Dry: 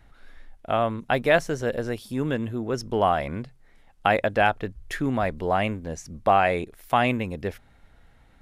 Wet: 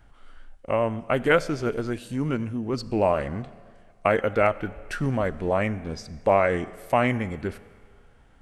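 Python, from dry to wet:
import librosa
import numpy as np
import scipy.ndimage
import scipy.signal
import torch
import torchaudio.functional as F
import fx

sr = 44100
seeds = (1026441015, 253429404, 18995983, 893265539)

y = fx.rev_schroeder(x, sr, rt60_s=1.8, comb_ms=29, drr_db=17.0)
y = fx.formant_shift(y, sr, semitones=-3)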